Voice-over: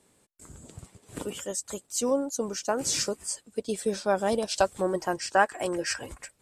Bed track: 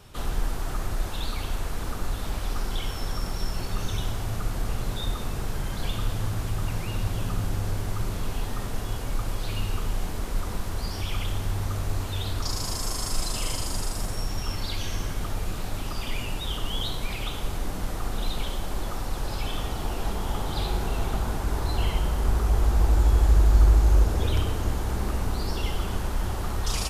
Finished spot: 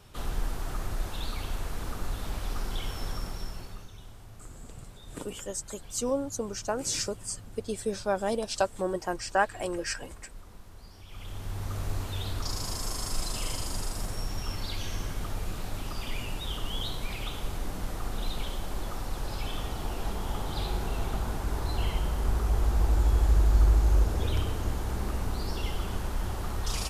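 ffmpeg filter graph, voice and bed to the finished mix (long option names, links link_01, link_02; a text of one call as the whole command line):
ffmpeg -i stem1.wav -i stem2.wav -filter_complex "[0:a]adelay=4000,volume=-3dB[link_01];[1:a]volume=11dB,afade=type=out:start_time=3.08:duration=0.81:silence=0.177828,afade=type=in:start_time=11.07:duration=0.77:silence=0.177828[link_02];[link_01][link_02]amix=inputs=2:normalize=0" out.wav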